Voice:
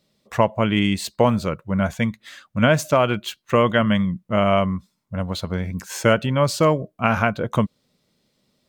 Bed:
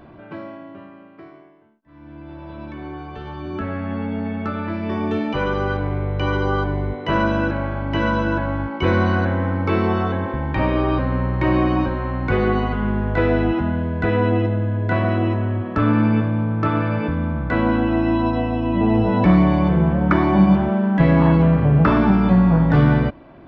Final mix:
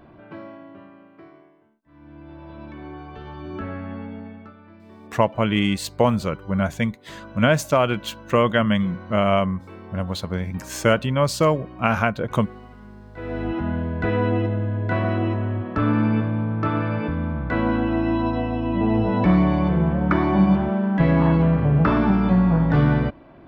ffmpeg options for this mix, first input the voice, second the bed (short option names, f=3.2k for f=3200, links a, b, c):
-filter_complex "[0:a]adelay=4800,volume=-1dB[a];[1:a]volume=14.5dB,afade=t=out:st=3.66:d=0.9:silence=0.133352,afade=t=in:st=13.14:d=0.58:silence=0.112202[b];[a][b]amix=inputs=2:normalize=0"